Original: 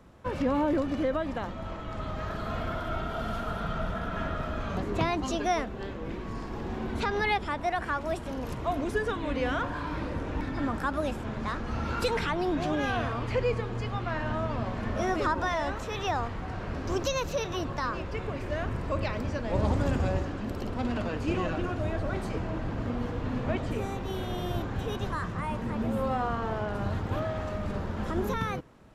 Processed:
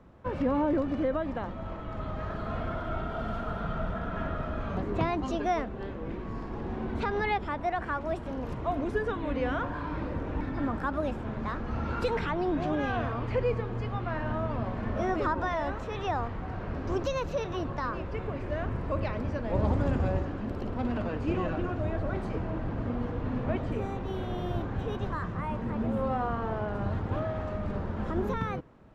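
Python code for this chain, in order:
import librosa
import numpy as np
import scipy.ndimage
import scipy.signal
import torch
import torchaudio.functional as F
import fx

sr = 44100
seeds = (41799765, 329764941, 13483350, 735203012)

y = fx.lowpass(x, sr, hz=1700.0, slope=6)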